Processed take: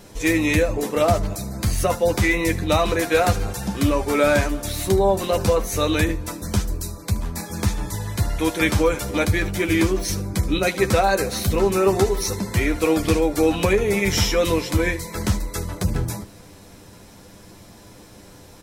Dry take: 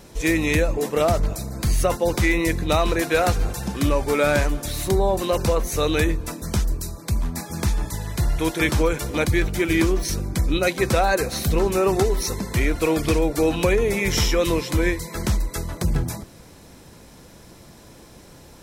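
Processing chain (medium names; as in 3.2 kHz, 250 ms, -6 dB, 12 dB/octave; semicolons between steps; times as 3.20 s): early reflections 10 ms -5.5 dB, 76 ms -17.5 dB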